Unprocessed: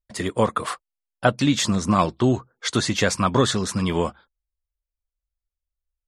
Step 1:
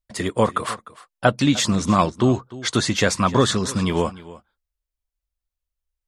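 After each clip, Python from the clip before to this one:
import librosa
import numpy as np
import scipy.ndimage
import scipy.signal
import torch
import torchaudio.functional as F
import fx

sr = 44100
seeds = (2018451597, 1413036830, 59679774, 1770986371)

y = x + 10.0 ** (-18.5 / 20.0) * np.pad(x, (int(302 * sr / 1000.0), 0))[:len(x)]
y = F.gain(torch.from_numpy(y), 1.5).numpy()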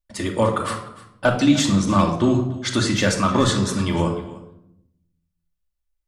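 y = np.clip(x, -10.0 ** (-6.5 / 20.0), 10.0 ** (-6.5 / 20.0))
y = fx.room_shoebox(y, sr, seeds[0], volume_m3=2000.0, walls='furnished', distance_m=2.5)
y = F.gain(torch.from_numpy(y), -2.5).numpy()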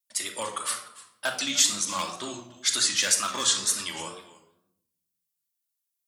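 y = fx.wow_flutter(x, sr, seeds[1], rate_hz=2.1, depth_cents=92.0)
y = np.diff(y, prepend=0.0)
y = F.gain(torch.from_numpy(y), 6.5).numpy()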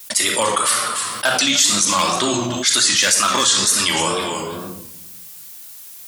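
y = fx.env_flatten(x, sr, amount_pct=70)
y = F.gain(torch.from_numpy(y), 4.5).numpy()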